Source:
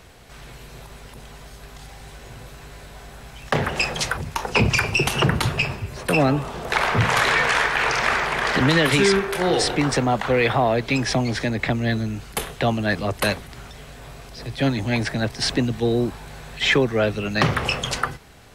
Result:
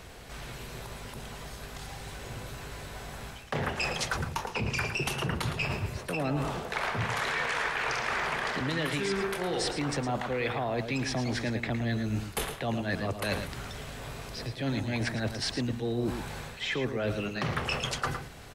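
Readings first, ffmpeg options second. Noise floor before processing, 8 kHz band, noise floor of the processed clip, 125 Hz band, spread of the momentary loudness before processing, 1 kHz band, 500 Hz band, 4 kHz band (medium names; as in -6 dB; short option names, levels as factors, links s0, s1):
-43 dBFS, -9.0 dB, -45 dBFS, -9.0 dB, 19 LU, -10.0 dB, -10.5 dB, -10.0 dB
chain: -filter_complex "[0:a]areverse,acompressor=threshold=0.0398:ratio=10,areverse,asplit=2[s0][s1];[s1]adelay=110.8,volume=0.398,highshelf=f=4000:g=-2.49[s2];[s0][s2]amix=inputs=2:normalize=0"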